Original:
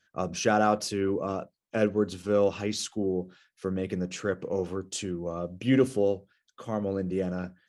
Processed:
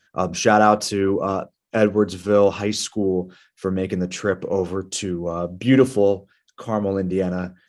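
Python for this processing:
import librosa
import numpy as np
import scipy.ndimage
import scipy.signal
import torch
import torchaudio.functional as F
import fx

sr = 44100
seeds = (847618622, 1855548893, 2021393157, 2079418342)

y = fx.dynamic_eq(x, sr, hz=1000.0, q=1.8, threshold_db=-40.0, ratio=4.0, max_db=4)
y = F.gain(torch.from_numpy(y), 7.5).numpy()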